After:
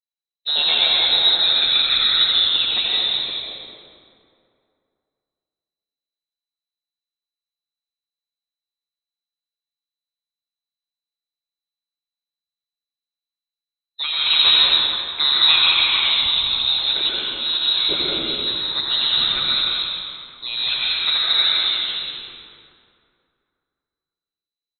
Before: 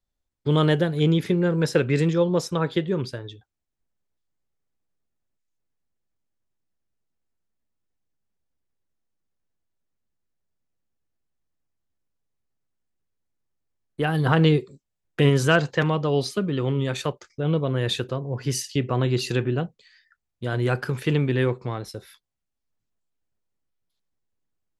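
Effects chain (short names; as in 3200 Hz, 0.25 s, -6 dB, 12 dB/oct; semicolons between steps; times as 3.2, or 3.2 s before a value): rattling part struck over -23 dBFS, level -27 dBFS; inverted band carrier 4000 Hz; spectral noise reduction 20 dB; on a send: frequency-shifting echo 85 ms, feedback 50%, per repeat -71 Hz, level -5.5 dB; on the sum: plate-style reverb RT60 2.4 s, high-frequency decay 0.6×, pre-delay 0.11 s, DRR -4.5 dB; gain -2 dB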